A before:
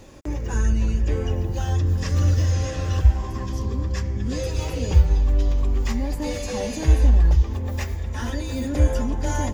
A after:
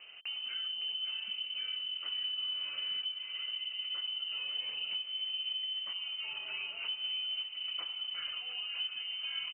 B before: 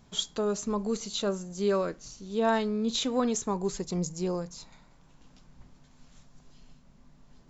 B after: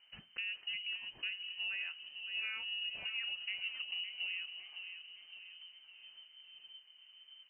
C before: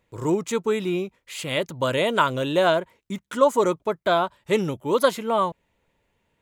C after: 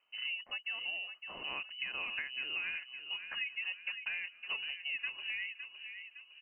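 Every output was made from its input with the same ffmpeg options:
ffmpeg -i in.wav -filter_complex "[0:a]acompressor=threshold=-31dB:ratio=6,asplit=2[link_01][link_02];[link_02]adelay=560,lowpass=frequency=1900:poles=1,volume=-8dB,asplit=2[link_03][link_04];[link_04]adelay=560,lowpass=frequency=1900:poles=1,volume=0.52,asplit=2[link_05][link_06];[link_06]adelay=560,lowpass=frequency=1900:poles=1,volume=0.52,asplit=2[link_07][link_08];[link_08]adelay=560,lowpass=frequency=1900:poles=1,volume=0.52,asplit=2[link_09][link_10];[link_10]adelay=560,lowpass=frequency=1900:poles=1,volume=0.52,asplit=2[link_11][link_12];[link_12]adelay=560,lowpass=frequency=1900:poles=1,volume=0.52[link_13];[link_01][link_03][link_05][link_07][link_09][link_11][link_13]amix=inputs=7:normalize=0,lowpass=frequency=2600:width_type=q:width=0.5098,lowpass=frequency=2600:width_type=q:width=0.6013,lowpass=frequency=2600:width_type=q:width=0.9,lowpass=frequency=2600:width_type=q:width=2.563,afreqshift=-3100,volume=-6.5dB" out.wav

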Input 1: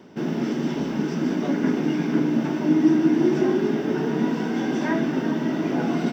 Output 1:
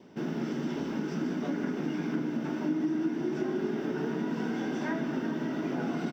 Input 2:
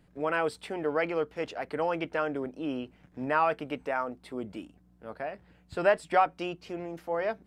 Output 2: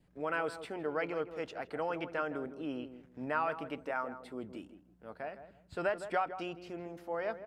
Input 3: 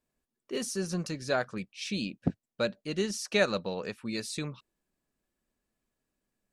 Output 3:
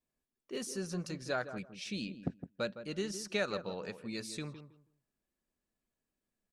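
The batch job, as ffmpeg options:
ffmpeg -i in.wav -filter_complex "[0:a]acompressor=threshold=-23dB:ratio=3,asplit=2[link_01][link_02];[link_02]adelay=161,lowpass=frequency=1100:poles=1,volume=-10dB,asplit=2[link_03][link_04];[link_04]adelay=161,lowpass=frequency=1100:poles=1,volume=0.23,asplit=2[link_05][link_06];[link_06]adelay=161,lowpass=frequency=1100:poles=1,volume=0.23[link_07];[link_03][link_05][link_07]amix=inputs=3:normalize=0[link_08];[link_01][link_08]amix=inputs=2:normalize=0,adynamicequalizer=threshold=0.00355:dfrequency=1400:dqfactor=4.7:tfrequency=1400:tqfactor=4.7:attack=5:release=100:ratio=0.375:range=2:mode=boostabove:tftype=bell,volume=-6dB" out.wav

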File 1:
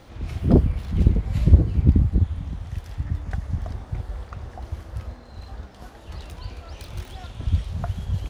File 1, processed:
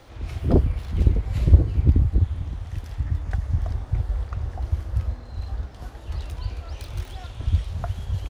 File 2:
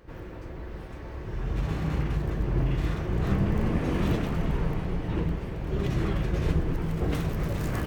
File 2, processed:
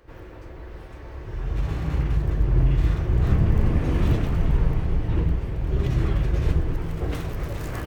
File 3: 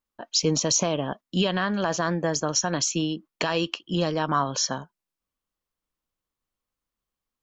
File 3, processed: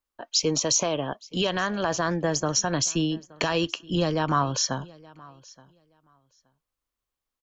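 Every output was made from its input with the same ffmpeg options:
ffmpeg -i in.wav -filter_complex "[0:a]equalizer=frequency=190:width=1.8:gain=-8,acrossover=split=230[link_01][link_02];[link_01]dynaudnorm=framelen=280:gausssize=13:maxgain=9dB[link_03];[link_03][link_02]amix=inputs=2:normalize=0,aecho=1:1:873|1746:0.0668|0.0114" out.wav

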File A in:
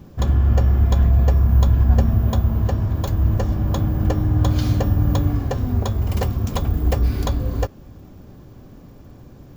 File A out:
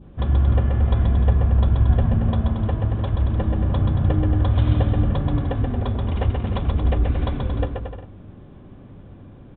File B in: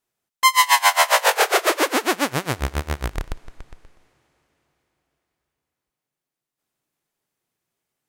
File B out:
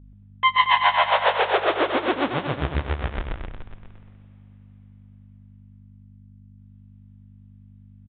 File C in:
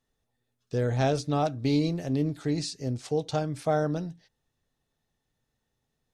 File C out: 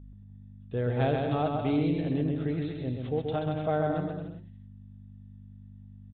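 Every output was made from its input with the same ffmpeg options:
ffmpeg -i in.wav -filter_complex "[0:a]adynamicequalizer=threshold=0.02:dfrequency=2000:dqfactor=1.1:tfrequency=2000:tqfactor=1.1:attack=5:release=100:ratio=0.375:range=2.5:mode=cutabove:tftype=bell,aeval=exprs='val(0)+0.00708*(sin(2*PI*50*n/s)+sin(2*PI*2*50*n/s)/2+sin(2*PI*3*50*n/s)/3+sin(2*PI*4*50*n/s)/4+sin(2*PI*5*50*n/s)/5)':channel_layout=same,asplit=2[link_01][link_02];[link_02]aecho=0:1:130|227.5|300.6|355.5|396.6:0.631|0.398|0.251|0.158|0.1[link_03];[link_01][link_03]amix=inputs=2:normalize=0,aresample=8000,aresample=44100,volume=-3dB" out.wav

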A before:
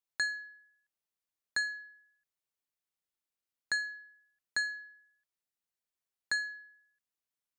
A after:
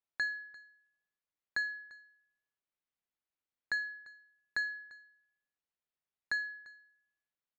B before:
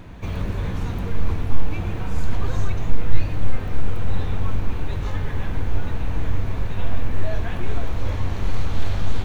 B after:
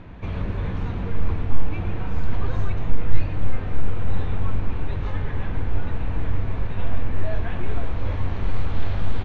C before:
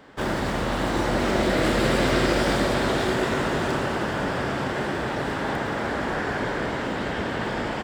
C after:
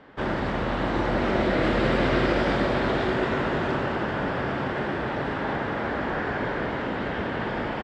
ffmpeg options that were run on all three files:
ffmpeg -i in.wav -af "lowpass=3200,aecho=1:1:346:0.0891,volume=-1dB" out.wav

